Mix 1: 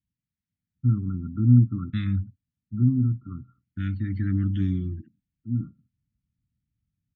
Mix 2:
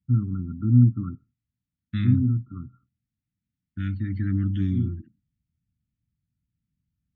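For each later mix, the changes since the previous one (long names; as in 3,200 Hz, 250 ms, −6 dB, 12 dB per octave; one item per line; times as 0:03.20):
first voice: entry −0.75 s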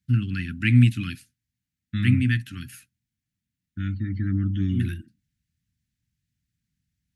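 first voice: remove linear-phase brick-wall low-pass 1,400 Hz
master: remove high-frequency loss of the air 72 metres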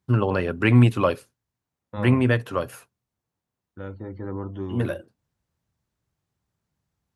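second voice −11.0 dB
master: remove inverse Chebyshev band-stop filter 450–1,000 Hz, stop band 50 dB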